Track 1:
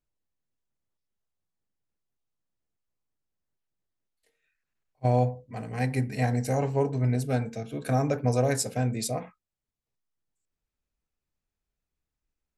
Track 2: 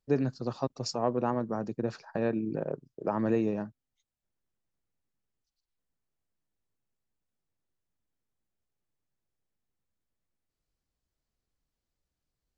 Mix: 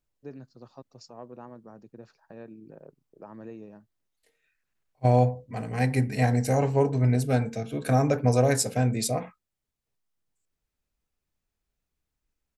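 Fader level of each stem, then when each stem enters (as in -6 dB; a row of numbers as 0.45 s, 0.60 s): +3.0 dB, -15.0 dB; 0.00 s, 0.15 s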